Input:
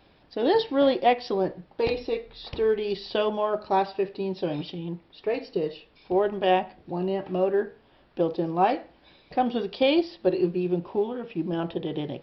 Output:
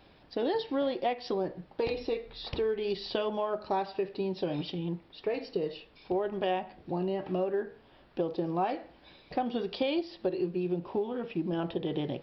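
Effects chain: compressor 4:1, threshold -28 dBFS, peak gain reduction 11.5 dB

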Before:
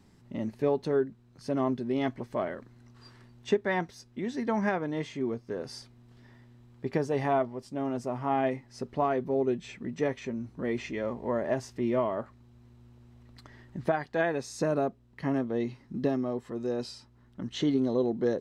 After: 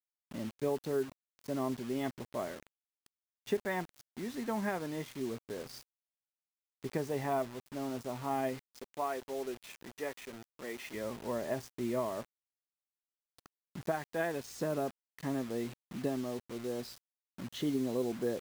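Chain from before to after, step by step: 8.7–10.94 weighting filter A; bit-crush 7-bit; gain -6.5 dB

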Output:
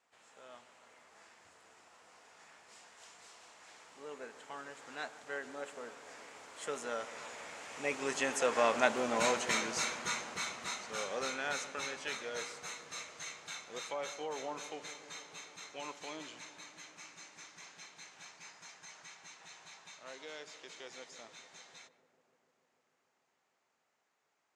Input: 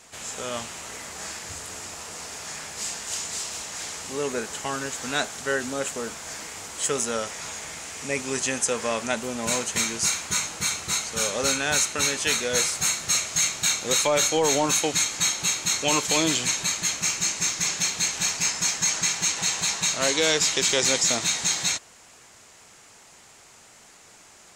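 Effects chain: Doppler pass-by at 8.98, 11 m/s, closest 9.1 m; harmoniser +5 st -16 dB; band-pass 1000 Hz, Q 0.52; on a send: darkening echo 0.148 s, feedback 84%, low-pass 1500 Hz, level -15 dB

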